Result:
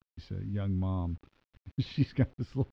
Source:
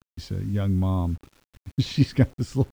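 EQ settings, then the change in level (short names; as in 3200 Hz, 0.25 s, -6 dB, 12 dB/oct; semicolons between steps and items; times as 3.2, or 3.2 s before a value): air absorption 310 m; high shelf 3000 Hz +9 dB; -8.0 dB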